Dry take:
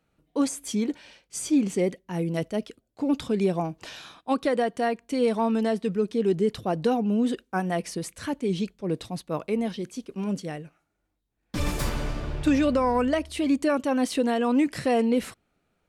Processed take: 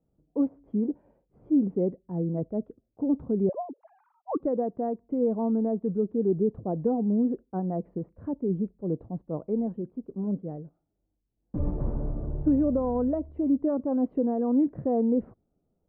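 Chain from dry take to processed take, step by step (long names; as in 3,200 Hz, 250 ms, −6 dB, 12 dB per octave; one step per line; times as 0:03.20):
0:03.49–0:04.40: three sine waves on the formant tracks
Bessel low-pass filter 510 Hz, order 4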